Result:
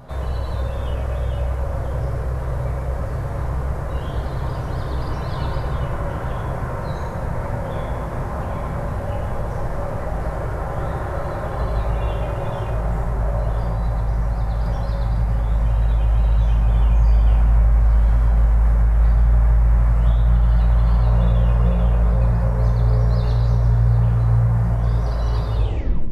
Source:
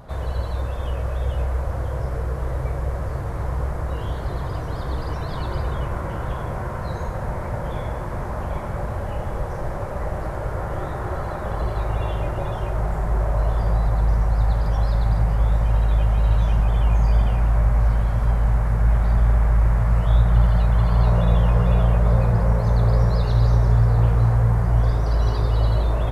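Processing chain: tape stop at the end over 0.58 s; compressor 2.5:1, threshold -20 dBFS, peak gain reduction 7 dB; on a send: reverb RT60 0.95 s, pre-delay 7 ms, DRR 3 dB

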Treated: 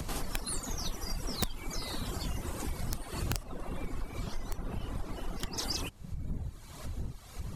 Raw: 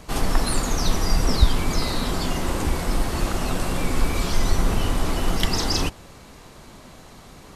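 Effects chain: wind noise 94 Hz -26 dBFS; wrapped overs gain 6.5 dB; 3.43–5.58 high shelf 2800 Hz -10.5 dB; reverb removal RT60 1.2 s; compressor 3:1, threshold -45 dBFS, peak gain reduction 24 dB; high shelf 6500 Hz +7.5 dB; gain +5.5 dB

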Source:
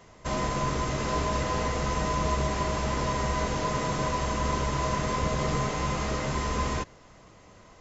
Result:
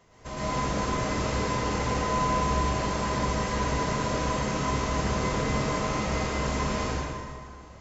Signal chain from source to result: plate-style reverb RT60 2 s, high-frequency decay 0.75×, pre-delay 95 ms, DRR -8.5 dB; gain -7.5 dB

